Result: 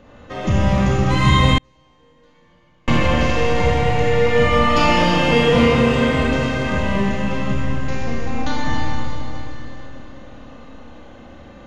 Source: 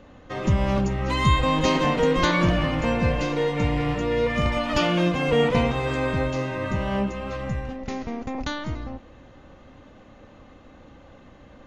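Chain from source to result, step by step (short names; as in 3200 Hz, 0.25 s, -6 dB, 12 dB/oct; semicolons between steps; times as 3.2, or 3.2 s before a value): Schroeder reverb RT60 3.5 s, combs from 26 ms, DRR -5.5 dB; 1.58–2.88 gate -5 dBFS, range -41 dB; gain +1 dB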